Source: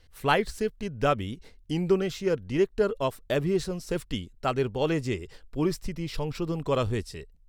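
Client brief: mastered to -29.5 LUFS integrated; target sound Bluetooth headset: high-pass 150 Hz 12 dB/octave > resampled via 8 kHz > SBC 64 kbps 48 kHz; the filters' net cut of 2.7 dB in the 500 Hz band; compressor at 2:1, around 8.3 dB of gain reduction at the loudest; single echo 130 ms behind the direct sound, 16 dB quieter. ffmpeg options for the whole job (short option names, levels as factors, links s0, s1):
-af "equalizer=f=500:t=o:g=-3.5,acompressor=threshold=0.0178:ratio=2,highpass=150,aecho=1:1:130:0.158,aresample=8000,aresample=44100,volume=2.37" -ar 48000 -c:a sbc -b:a 64k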